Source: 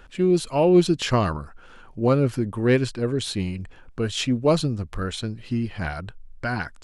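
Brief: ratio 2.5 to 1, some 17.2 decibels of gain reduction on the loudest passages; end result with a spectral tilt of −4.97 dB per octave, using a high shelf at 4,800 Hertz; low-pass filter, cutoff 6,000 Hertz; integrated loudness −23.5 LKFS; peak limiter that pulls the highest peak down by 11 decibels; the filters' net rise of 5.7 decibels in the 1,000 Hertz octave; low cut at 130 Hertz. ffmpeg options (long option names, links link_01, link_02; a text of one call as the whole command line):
ffmpeg -i in.wav -af "highpass=130,lowpass=6000,equalizer=frequency=1000:width_type=o:gain=7,highshelf=frequency=4800:gain=5.5,acompressor=threshold=-39dB:ratio=2.5,volume=16.5dB,alimiter=limit=-12.5dB:level=0:latency=1" out.wav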